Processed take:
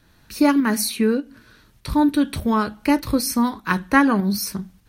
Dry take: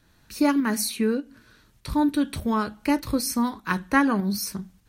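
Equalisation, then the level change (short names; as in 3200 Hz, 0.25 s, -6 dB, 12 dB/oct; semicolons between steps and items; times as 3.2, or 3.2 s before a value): bell 7300 Hz -3.5 dB 0.53 oct; +4.5 dB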